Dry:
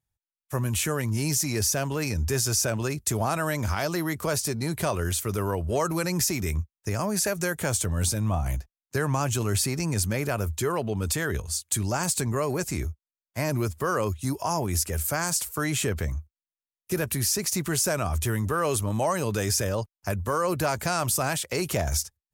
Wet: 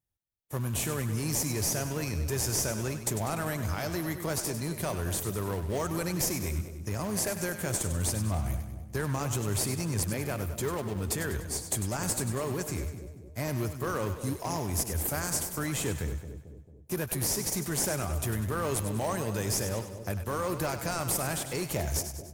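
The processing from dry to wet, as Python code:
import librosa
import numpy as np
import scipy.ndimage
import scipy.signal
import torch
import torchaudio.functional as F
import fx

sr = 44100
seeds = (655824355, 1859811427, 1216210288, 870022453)

p1 = fx.high_shelf(x, sr, hz=10000.0, db=7.5)
p2 = fx.sample_hold(p1, sr, seeds[0], rate_hz=1400.0, jitter_pct=20)
p3 = p1 + (p2 * librosa.db_to_amplitude(-8.0))
p4 = fx.echo_split(p3, sr, split_hz=640.0, low_ms=222, high_ms=98, feedback_pct=52, wet_db=-9.5)
y = p4 * librosa.db_to_amplitude(-7.5)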